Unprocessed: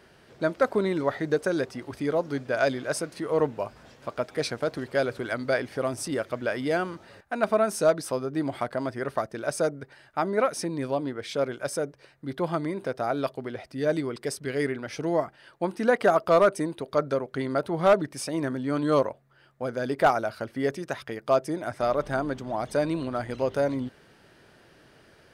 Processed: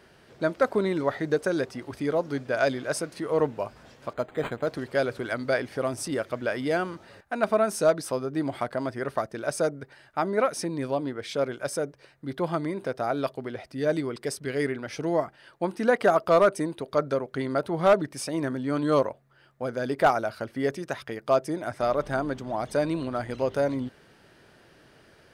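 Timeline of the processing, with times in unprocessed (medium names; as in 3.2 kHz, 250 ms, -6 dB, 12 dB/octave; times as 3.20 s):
4.13–4.67 s: decimation joined by straight lines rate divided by 8×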